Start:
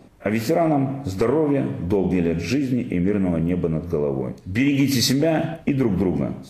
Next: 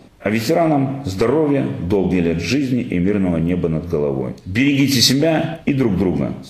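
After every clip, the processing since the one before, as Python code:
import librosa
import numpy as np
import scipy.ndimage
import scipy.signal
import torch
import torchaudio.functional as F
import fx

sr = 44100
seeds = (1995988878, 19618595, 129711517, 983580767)

y = fx.peak_eq(x, sr, hz=3700.0, db=5.5, octaves=1.4)
y = y * librosa.db_to_amplitude(3.5)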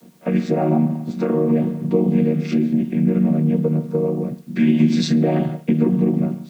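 y = fx.chord_vocoder(x, sr, chord='minor triad', root=51)
y = fx.quant_dither(y, sr, seeds[0], bits=10, dither='triangular')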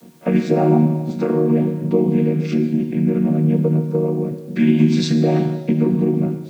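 y = fx.rider(x, sr, range_db=10, speed_s=2.0)
y = fx.rev_plate(y, sr, seeds[1], rt60_s=1.6, hf_ratio=1.0, predelay_ms=0, drr_db=8.5)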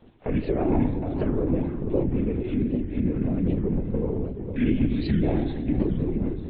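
y = fx.echo_feedback(x, sr, ms=451, feedback_pct=38, wet_db=-8)
y = fx.lpc_vocoder(y, sr, seeds[2], excitation='whisper', order=16)
y = fx.record_warp(y, sr, rpm=78.0, depth_cents=250.0)
y = y * librosa.db_to_amplitude(-8.5)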